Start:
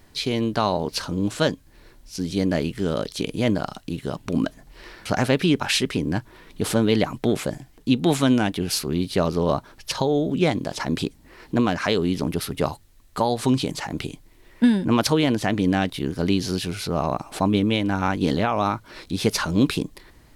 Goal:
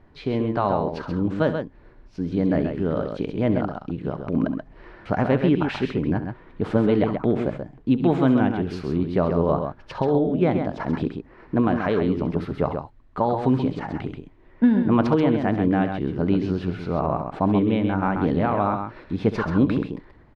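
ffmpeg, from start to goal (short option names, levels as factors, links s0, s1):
-filter_complex "[0:a]lowpass=1500,asplit=2[s0][s1];[s1]aecho=0:1:68|132:0.211|0.473[s2];[s0][s2]amix=inputs=2:normalize=0"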